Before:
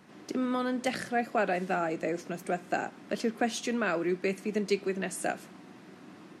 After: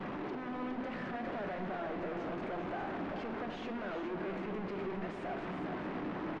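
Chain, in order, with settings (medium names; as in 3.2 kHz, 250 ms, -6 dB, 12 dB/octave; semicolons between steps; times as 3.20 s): one-bit comparator; expander -28 dBFS; tone controls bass -6 dB, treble -12 dB; peak limiter -43 dBFS, peak gain reduction 6 dB; tape spacing loss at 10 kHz 36 dB; delay 410 ms -7.5 dB; on a send at -7.5 dB: reverberation RT60 2.4 s, pre-delay 5 ms; on the sum: trim +10 dB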